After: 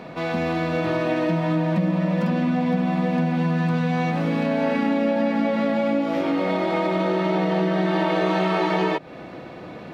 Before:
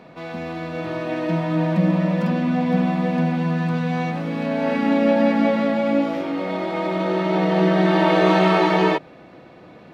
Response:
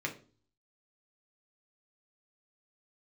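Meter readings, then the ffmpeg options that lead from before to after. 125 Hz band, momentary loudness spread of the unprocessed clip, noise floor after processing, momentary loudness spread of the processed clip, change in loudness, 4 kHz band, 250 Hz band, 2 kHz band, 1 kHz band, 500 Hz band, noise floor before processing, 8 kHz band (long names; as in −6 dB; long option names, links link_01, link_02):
−1.5 dB, 10 LU, −38 dBFS, 4 LU, −2.0 dB, −2.5 dB, −2.0 dB, −2.0 dB, −2.5 dB, −2.0 dB, −45 dBFS, can't be measured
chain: -af "acompressor=threshold=-26dB:ratio=6,volume=7dB"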